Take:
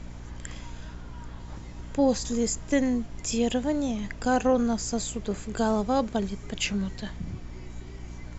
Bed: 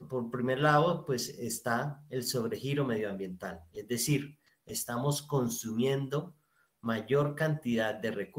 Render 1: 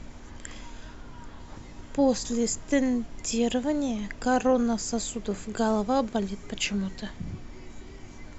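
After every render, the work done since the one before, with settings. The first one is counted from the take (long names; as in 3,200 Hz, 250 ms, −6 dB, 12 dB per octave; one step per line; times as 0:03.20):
mains-hum notches 60/120/180 Hz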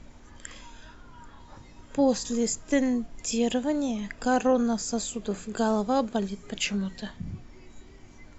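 noise reduction from a noise print 6 dB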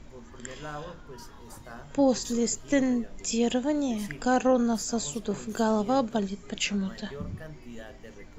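mix in bed −14 dB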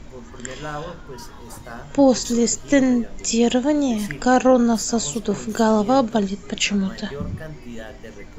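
level +8 dB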